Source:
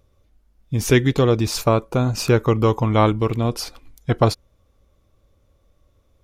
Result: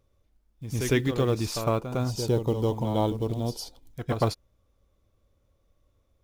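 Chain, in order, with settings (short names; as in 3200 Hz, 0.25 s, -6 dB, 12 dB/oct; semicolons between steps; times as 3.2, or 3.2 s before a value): spectral gain 2.11–3.94, 1000–2900 Hz -13 dB; reverse echo 0.106 s -8 dB; short-mantissa float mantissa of 4-bit; gain -8.5 dB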